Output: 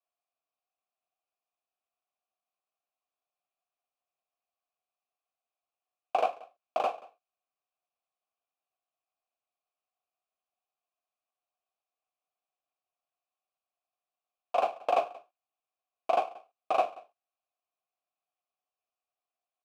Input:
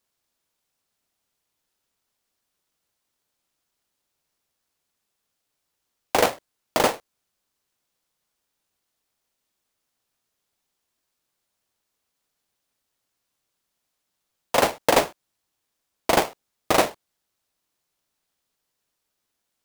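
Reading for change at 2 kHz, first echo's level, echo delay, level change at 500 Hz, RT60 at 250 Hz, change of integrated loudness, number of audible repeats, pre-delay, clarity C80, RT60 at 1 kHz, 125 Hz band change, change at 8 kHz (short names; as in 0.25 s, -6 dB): -15.5 dB, -22.0 dB, 0.181 s, -8.0 dB, none, -8.5 dB, 1, none, none, none, under -25 dB, under -25 dB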